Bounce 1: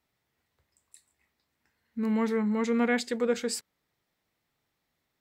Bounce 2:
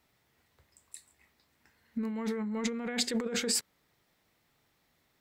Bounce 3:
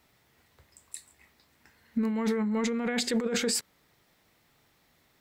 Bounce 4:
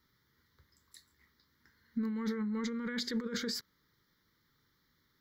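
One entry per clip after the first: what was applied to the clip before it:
compressor whose output falls as the input rises −34 dBFS, ratio −1; level +1 dB
brickwall limiter −25 dBFS, peak gain reduction 9 dB; level +6 dB
phaser with its sweep stopped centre 2,600 Hz, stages 6; level −5 dB

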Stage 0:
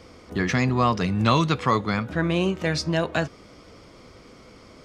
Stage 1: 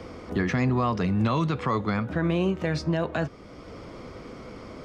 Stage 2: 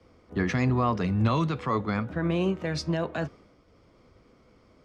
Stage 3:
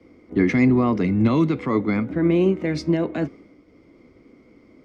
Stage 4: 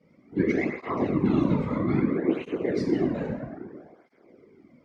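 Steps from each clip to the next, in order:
high-shelf EQ 2,800 Hz −10.5 dB; brickwall limiter −14.5 dBFS, peak gain reduction 7 dB; multiband upward and downward compressor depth 40%
multiband upward and downward expander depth 100%; level −1.5 dB
hollow resonant body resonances 290/2,100 Hz, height 15 dB, ringing for 20 ms; level −1.5 dB
dense smooth reverb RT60 2 s, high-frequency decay 0.35×, pre-delay 0 ms, DRR −4 dB; random phases in short frames; through-zero flanger with one copy inverted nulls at 0.61 Hz, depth 3 ms; level −8.5 dB

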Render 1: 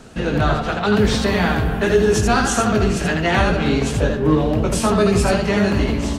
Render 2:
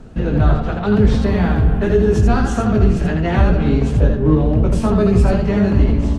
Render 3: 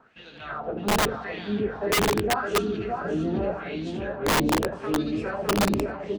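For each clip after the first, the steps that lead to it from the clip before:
spectral tilt −3 dB per octave; level −4 dB
LFO wah 0.84 Hz 270–3,800 Hz, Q 2.9; single-tap delay 612 ms −5.5 dB; wrap-around overflow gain 16.5 dB

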